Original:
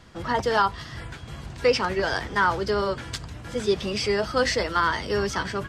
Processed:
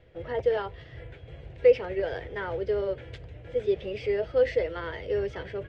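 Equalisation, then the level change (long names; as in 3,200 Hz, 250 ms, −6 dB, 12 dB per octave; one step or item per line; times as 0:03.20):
drawn EQ curve 120 Hz 0 dB, 220 Hz −12 dB, 500 Hz +8 dB, 1,100 Hz −16 dB, 2,100 Hz −2 dB, 3,300 Hz −7 dB, 4,700 Hz −19 dB, 12,000 Hz −29 dB
−5.0 dB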